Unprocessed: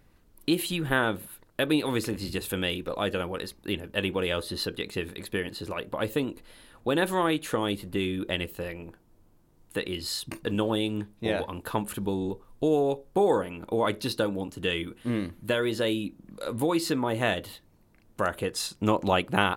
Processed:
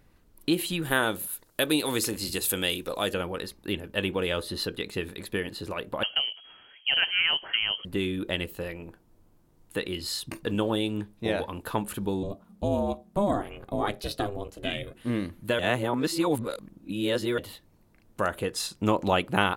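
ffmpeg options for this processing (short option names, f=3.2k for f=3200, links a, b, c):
-filter_complex "[0:a]asettb=1/sr,asplit=3[a][b][c];[a]atrim=end=0.824[d];[b]atrim=start=0.82:end=3.14,asetpts=PTS-STARTPTS,afade=t=in:d=0.004:c=qsin,afade=t=out:st=2.316:d=0.004:c=qsin,bass=f=250:g=-4,treble=f=4k:g=11[e];[c]atrim=start=3.136[f];[d][e]acrossfade=d=0.004:c1=hsin:c2=qsin[g];[g][f]acrossfade=d=0.004:c1=qsin:c2=hsin,asettb=1/sr,asplit=3[h][i][j];[h]atrim=end=6.034[k];[i]atrim=start=6.03:end=7.85,asetpts=PTS-STARTPTS,afade=t=in:d=0.004:c=qsin,afade=t=out:st=1.816:d=0.004:c=qsin,lowpass=f=2.8k:t=q:w=0.5098,lowpass=f=2.8k:t=q:w=0.6013,lowpass=f=2.8k:t=q:w=0.9,lowpass=f=2.8k:t=q:w=2.563,afreqshift=-3300[l];[j]atrim=start=7.846[m];[k][l]acrossfade=d=0.004:c1=hsin:c2=qsin[n];[n][m]acrossfade=d=0.004:c1=qsin:c2=hsin,asettb=1/sr,asplit=3[o][p][q];[o]atrim=end=12.234[r];[p]atrim=start=12.23:end=14.95,asetpts=PTS-STARTPTS,afade=t=in:d=0.004:c=qsin,afade=t=out:st=2.716:d=0.004:c=qsin,aeval=exprs='val(0)*sin(2*PI*200*n/s)':c=same[s];[q]atrim=start=14.946[t];[r][s]acrossfade=d=0.004:c1=hsin:c2=qsin[u];[u][t]acrossfade=d=0.004:c1=qsin:c2=hsin,asplit=3[v][w][x];[v]atrim=end=15.592[y];[w]atrim=start=15.588:end=17.382,asetpts=PTS-STARTPTS,areverse[z];[x]atrim=start=17.378[aa];[y][z]acrossfade=d=0.004:c1=hsin:c2=hsin[ab];[ab][aa]acrossfade=d=0.004:c1=hsin:c2=hsin"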